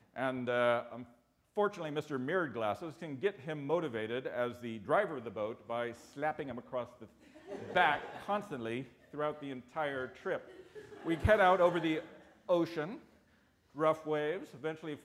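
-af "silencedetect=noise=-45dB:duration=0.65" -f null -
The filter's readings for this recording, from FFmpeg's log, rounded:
silence_start: 12.98
silence_end: 13.76 | silence_duration: 0.79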